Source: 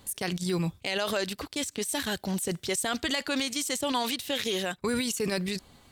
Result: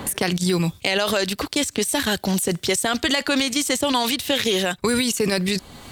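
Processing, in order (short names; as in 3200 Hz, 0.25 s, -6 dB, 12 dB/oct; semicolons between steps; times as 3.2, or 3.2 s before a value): three-band squash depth 70%; gain +8 dB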